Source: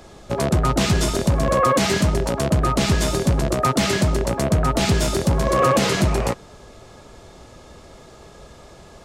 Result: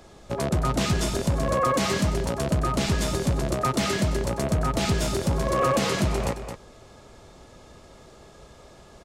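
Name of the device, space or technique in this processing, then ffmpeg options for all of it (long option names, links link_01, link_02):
ducked delay: -filter_complex "[0:a]asplit=3[link_01][link_02][link_03];[link_02]adelay=218,volume=-8.5dB[link_04];[link_03]apad=whole_len=408413[link_05];[link_04][link_05]sidechaincompress=threshold=-19dB:ratio=8:attack=11:release=282[link_06];[link_01][link_06]amix=inputs=2:normalize=0,volume=-5.5dB"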